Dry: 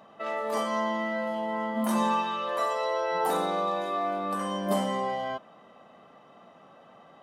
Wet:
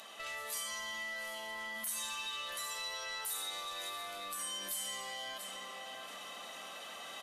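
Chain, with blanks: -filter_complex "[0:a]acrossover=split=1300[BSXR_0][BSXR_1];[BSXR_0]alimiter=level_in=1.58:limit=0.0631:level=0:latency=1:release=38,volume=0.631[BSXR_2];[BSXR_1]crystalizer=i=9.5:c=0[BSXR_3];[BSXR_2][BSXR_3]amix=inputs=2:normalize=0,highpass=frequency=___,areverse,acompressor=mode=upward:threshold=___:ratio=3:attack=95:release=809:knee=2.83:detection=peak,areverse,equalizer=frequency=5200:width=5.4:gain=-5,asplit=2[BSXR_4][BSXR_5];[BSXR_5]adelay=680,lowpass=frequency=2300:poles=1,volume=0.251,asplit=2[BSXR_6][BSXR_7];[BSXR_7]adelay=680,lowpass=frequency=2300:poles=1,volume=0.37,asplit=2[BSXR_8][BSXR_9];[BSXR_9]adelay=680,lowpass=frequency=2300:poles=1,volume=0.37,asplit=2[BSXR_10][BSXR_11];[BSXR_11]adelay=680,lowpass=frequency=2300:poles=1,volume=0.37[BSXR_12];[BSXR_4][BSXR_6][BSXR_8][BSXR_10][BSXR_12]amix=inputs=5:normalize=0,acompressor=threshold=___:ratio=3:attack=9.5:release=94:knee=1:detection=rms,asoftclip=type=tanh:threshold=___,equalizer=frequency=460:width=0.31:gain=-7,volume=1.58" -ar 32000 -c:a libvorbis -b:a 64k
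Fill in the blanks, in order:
340, 0.00891, 0.00708, 0.0158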